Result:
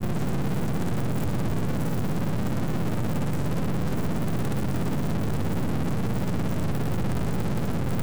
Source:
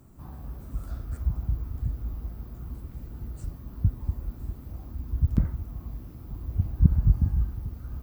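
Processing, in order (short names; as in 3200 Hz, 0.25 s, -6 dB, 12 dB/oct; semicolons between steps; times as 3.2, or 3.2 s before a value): per-bin compression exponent 0.2; Bessel high-pass 160 Hz, order 8; in parallel at -5.5 dB: companded quantiser 2-bit; on the sum: half-wave rectifier; grains 0.1 s, grains 17/s; soft clip -26.5 dBFS, distortion -10 dB; gain +7.5 dB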